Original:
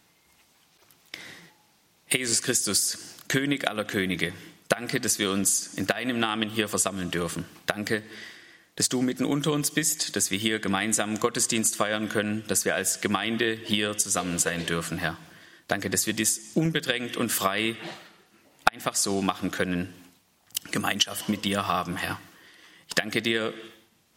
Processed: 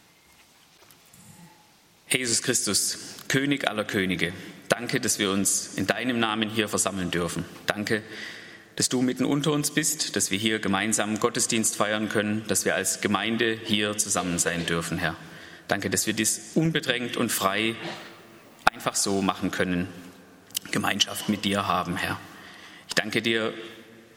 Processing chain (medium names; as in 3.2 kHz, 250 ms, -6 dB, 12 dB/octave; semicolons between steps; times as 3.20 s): in parallel at +0.5 dB: compression, threshold -38 dBFS, peak gain reduction 23 dB; 1.06–1.49 s: on the sum: spectral replace 230–6800 Hz; 17.95–19.33 s: added noise violet -61 dBFS; treble shelf 11 kHz -5.5 dB; on a send at -20.5 dB: reverberation RT60 4.9 s, pre-delay 45 ms